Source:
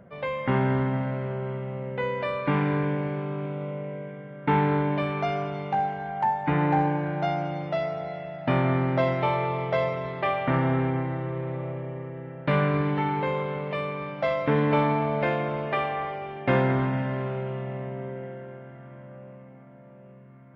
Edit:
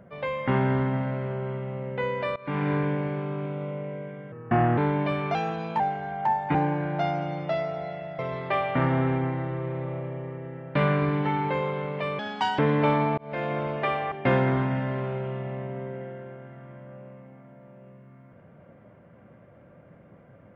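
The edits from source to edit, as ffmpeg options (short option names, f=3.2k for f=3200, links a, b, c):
-filter_complex "[0:a]asplit=12[a][b][c][d][e][f][g][h][i][j][k][l];[a]atrim=end=2.36,asetpts=PTS-STARTPTS,afade=t=out:st=2.356:d=0.004:c=hsin:silence=0.0891251[m];[b]atrim=start=2.36:end=4.324,asetpts=PTS-STARTPTS,afade=t=in:d=0.35:silence=0.0891251[n];[c]atrim=start=4.32:end=4.69,asetpts=PTS-STARTPTS,asetrate=35721,aresample=44100,atrim=end_sample=20144,asetpts=PTS-STARTPTS[o];[d]atrim=start=4.686:end=5.264[p];[e]atrim=start=5.26:end=5.77,asetpts=PTS-STARTPTS,asetrate=49833,aresample=44100[q];[f]atrim=start=5.766:end=6.522[r];[g]atrim=start=6.778:end=8.422[s];[h]atrim=start=9.908:end=13.914[t];[i]atrim=start=13.91:end=14.48,asetpts=PTS-STARTPTS,asetrate=63063,aresample=44100,atrim=end_sample=17578,asetpts=PTS-STARTPTS[u];[j]atrim=start=14.476:end=15.07,asetpts=PTS-STARTPTS,afade=t=out:st=0.59:d=0.004:c=hsin[v];[k]atrim=start=15.07:end=16.012,asetpts=PTS-STARTPTS,afade=t=in:d=0.39[w];[l]atrim=start=16.338[x];[m][n]concat=n=2:v=0:a=1[y];[y][o]acrossfade=d=0.004:c1=hsin:c2=hsin[z];[z][p]acrossfade=d=0.004:c1=hsin:c2=hsin[aa];[aa][q]acrossfade=d=0.004:c1=hsin:c2=hsin[ab];[ab][r]acrossfade=d=0.004:c1=hsin:c2=hsin[ac];[ac][s]acrossfade=d=0.004:c1=hsin:c2=hsin[ad];[ad][t]acrossfade=d=0.004:c1=hsin:c2=hsin[ae];[ae][u]acrossfade=d=0.004:c1=hsin:c2=hsin[af];[v][w]concat=n=2:v=0:a=1[ag];[af][ag]acrossfade=d=0.004:c1=hsin:c2=hsin[ah];[ah][x]acrossfade=d=0.004:c1=hsin:c2=hsin"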